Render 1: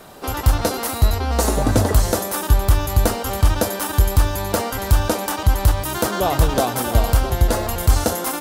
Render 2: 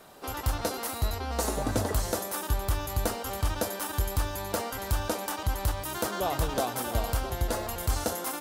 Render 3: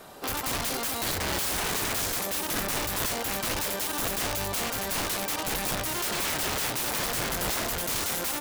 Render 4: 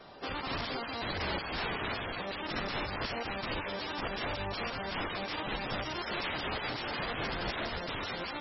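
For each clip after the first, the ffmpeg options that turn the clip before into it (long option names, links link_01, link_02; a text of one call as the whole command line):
ffmpeg -i in.wav -af "lowshelf=frequency=250:gain=-5,volume=-9dB" out.wav
ffmpeg -i in.wav -af "aeval=exprs='(mod(28.2*val(0)+1,2)-1)/28.2':channel_layout=same,volume=5dB" out.wav
ffmpeg -i in.wav -af "volume=-4dB" -ar 24000 -c:a libmp3lame -b:a 16k out.mp3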